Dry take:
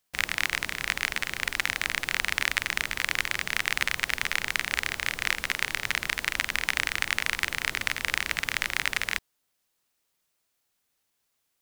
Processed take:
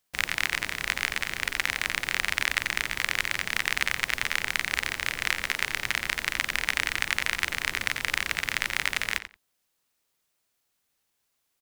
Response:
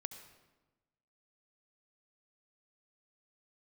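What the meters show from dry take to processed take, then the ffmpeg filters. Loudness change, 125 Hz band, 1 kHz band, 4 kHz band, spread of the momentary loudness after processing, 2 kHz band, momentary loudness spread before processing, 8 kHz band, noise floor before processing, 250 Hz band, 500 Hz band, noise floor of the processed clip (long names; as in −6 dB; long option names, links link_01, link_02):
+0.5 dB, +0.5 dB, +0.5 dB, 0.0 dB, 3 LU, +0.5 dB, 2 LU, 0.0 dB, −77 dBFS, +0.5 dB, +0.5 dB, −77 dBFS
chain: -filter_complex "[0:a]asplit=2[link_01][link_02];[link_02]adelay=89,lowpass=frequency=4300:poles=1,volume=-10.5dB,asplit=2[link_03][link_04];[link_04]adelay=89,lowpass=frequency=4300:poles=1,volume=0.16[link_05];[link_01][link_03][link_05]amix=inputs=3:normalize=0"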